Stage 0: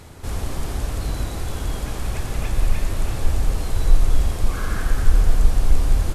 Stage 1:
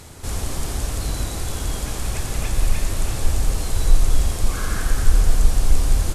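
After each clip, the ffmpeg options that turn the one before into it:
-af "equalizer=f=8100:w=0.53:g=8"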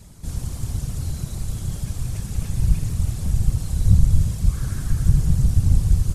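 -af "afftfilt=real='hypot(re,im)*cos(2*PI*random(0))':imag='hypot(re,im)*sin(2*PI*random(1))':win_size=512:overlap=0.75,bass=f=250:g=13,treble=f=4000:g=6,volume=0.447"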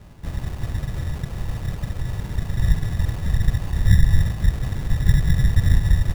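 -af "acrusher=samples=24:mix=1:aa=0.000001"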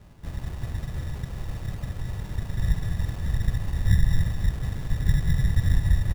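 -af "aecho=1:1:202:0.376,volume=0.531"

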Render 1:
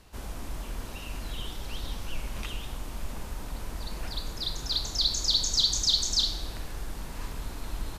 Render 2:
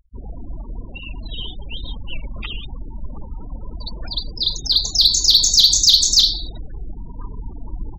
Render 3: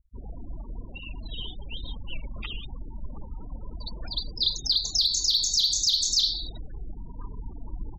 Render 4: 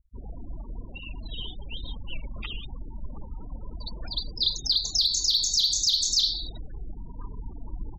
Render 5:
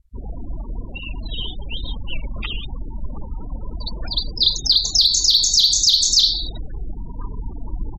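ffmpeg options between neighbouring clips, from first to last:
-af "afftfilt=real='re*gte(hypot(re,im),0.02)':imag='im*gte(hypot(re,im),0.02)':win_size=1024:overlap=0.75,highshelf=f=2100:g=9.5,acontrast=47"
-af "adynamicequalizer=threshold=0.0631:dfrequency=4300:dqfactor=0.85:tfrequency=4300:tqfactor=0.85:attack=5:release=100:ratio=0.375:range=2.5:mode=boostabove:tftype=bell,alimiter=limit=0.398:level=0:latency=1:release=258,volume=0.473"
-af anull
-af "aresample=32000,aresample=44100,volume=2.66"

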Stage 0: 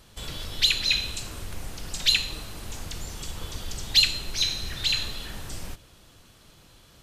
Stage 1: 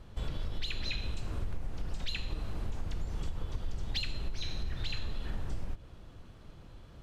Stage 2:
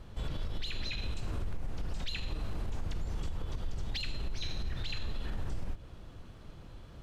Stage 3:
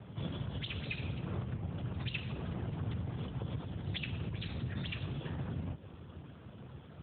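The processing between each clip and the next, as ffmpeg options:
-af "lowpass=f=1000:p=1,lowshelf=f=93:g=7,acompressor=threshold=0.0282:ratio=6,volume=1.19"
-af "alimiter=level_in=1.78:limit=0.0631:level=0:latency=1:release=31,volume=0.562,volume=1.26"
-filter_complex "[0:a]afftfilt=real='hypot(re,im)*cos(2*PI*random(0))':imag='hypot(re,im)*sin(2*PI*random(1))':win_size=512:overlap=0.75,acrossover=split=280|910[s0][s1][s2];[s0]asoftclip=type=tanh:threshold=0.0158[s3];[s3][s1][s2]amix=inputs=3:normalize=0,volume=2.66" -ar 8000 -c:a libopencore_amrnb -b:a 12200

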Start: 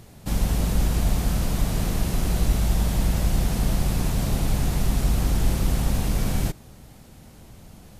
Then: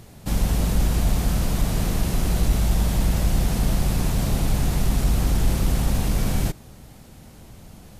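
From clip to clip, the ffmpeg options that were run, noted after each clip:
-af "acontrast=59,volume=0.596"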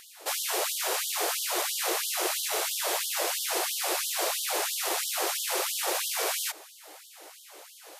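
-af "aeval=exprs='val(0)+0.0316*(sin(2*PI*60*n/s)+sin(2*PI*2*60*n/s)/2+sin(2*PI*3*60*n/s)/3+sin(2*PI*4*60*n/s)/4+sin(2*PI*5*60*n/s)/5)':c=same,afftfilt=real='re*gte(b*sr/1024,310*pow(3000/310,0.5+0.5*sin(2*PI*3*pts/sr)))':imag='im*gte(b*sr/1024,310*pow(3000/310,0.5+0.5*sin(2*PI*3*pts/sr)))':win_size=1024:overlap=0.75,volume=1.78"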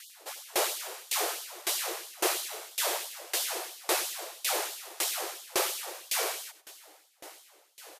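-af "aecho=1:1:98|196|294:0.335|0.0636|0.0121,aeval=exprs='val(0)*pow(10,-25*if(lt(mod(1.8*n/s,1),2*abs(1.8)/1000),1-mod(1.8*n/s,1)/(2*abs(1.8)/1000),(mod(1.8*n/s,1)-2*abs(1.8)/1000)/(1-2*abs(1.8)/1000))/20)':c=same,volume=1.5"

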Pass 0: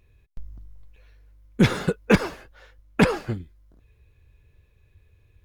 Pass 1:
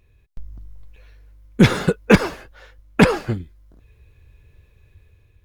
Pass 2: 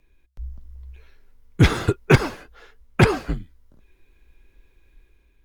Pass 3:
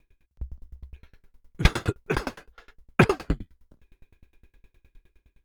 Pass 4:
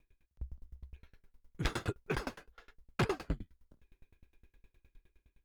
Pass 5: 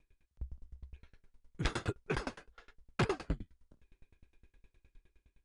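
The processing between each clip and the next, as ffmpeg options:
-af "dynaudnorm=f=230:g=5:m=1.78,volume=1.19"
-af "afreqshift=-65,volume=0.794"
-af "aeval=exprs='val(0)*pow(10,-30*if(lt(mod(9.7*n/s,1),2*abs(9.7)/1000),1-mod(9.7*n/s,1)/(2*abs(9.7)/1000),(mod(9.7*n/s,1)-2*abs(9.7)/1000)/(1-2*abs(9.7)/1000))/20)':c=same,volume=1.68"
-af "asoftclip=type=tanh:threshold=0.126,volume=0.447"
-af "aresample=22050,aresample=44100"

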